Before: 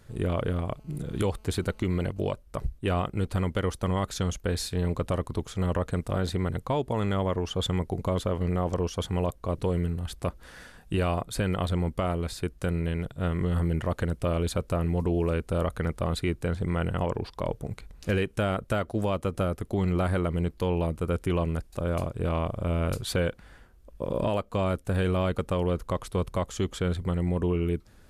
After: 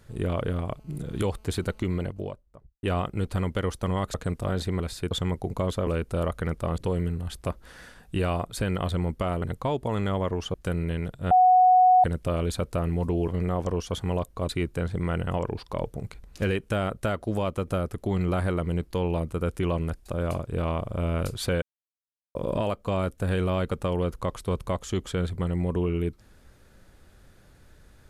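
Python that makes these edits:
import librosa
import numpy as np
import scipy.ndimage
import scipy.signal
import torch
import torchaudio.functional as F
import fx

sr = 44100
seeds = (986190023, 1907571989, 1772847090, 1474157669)

y = fx.studio_fade_out(x, sr, start_s=1.76, length_s=1.07)
y = fx.edit(y, sr, fx.cut(start_s=4.14, length_s=1.67),
    fx.swap(start_s=6.47, length_s=1.12, other_s=12.2, other_length_s=0.31),
    fx.swap(start_s=8.35, length_s=1.21, other_s=15.25, other_length_s=0.91),
    fx.bleep(start_s=13.28, length_s=0.73, hz=737.0, db=-13.5),
    fx.silence(start_s=23.29, length_s=0.73), tone=tone)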